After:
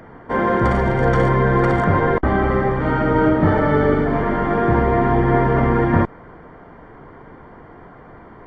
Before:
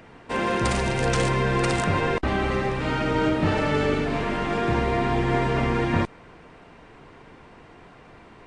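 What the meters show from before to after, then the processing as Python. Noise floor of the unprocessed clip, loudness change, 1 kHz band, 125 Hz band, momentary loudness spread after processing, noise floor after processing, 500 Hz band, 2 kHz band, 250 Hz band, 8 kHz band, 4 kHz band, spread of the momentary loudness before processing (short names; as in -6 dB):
-49 dBFS, +6.5 dB, +7.0 dB, +7.0 dB, 3 LU, -42 dBFS, +7.0 dB, +3.5 dB, +7.0 dB, under -15 dB, -8.0 dB, 3 LU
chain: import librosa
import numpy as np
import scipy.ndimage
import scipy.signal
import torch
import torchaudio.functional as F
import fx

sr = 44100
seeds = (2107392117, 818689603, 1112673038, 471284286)

y = scipy.signal.savgol_filter(x, 41, 4, mode='constant')
y = y * 10.0 ** (7.0 / 20.0)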